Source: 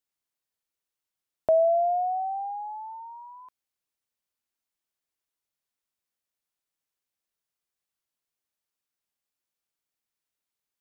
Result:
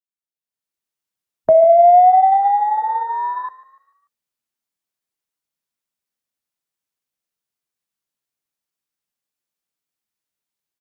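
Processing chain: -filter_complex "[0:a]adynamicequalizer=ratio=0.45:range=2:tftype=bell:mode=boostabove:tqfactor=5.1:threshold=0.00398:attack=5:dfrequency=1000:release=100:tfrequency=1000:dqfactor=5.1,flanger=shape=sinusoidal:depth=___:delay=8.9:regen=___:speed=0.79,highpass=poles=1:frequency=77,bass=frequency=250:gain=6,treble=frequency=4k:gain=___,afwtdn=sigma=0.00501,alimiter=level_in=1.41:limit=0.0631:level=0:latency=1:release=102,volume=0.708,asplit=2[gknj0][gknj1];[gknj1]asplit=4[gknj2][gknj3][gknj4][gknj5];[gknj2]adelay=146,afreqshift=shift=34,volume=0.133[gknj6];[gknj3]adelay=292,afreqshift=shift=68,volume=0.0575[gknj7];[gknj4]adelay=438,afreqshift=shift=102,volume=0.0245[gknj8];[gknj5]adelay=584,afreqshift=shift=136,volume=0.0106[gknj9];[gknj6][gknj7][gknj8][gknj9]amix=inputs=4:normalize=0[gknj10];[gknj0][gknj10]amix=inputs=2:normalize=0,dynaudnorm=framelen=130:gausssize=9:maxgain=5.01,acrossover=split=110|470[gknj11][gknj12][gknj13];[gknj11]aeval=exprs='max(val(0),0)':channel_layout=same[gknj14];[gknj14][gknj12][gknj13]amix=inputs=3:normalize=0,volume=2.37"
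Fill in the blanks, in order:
7.2, -58, 1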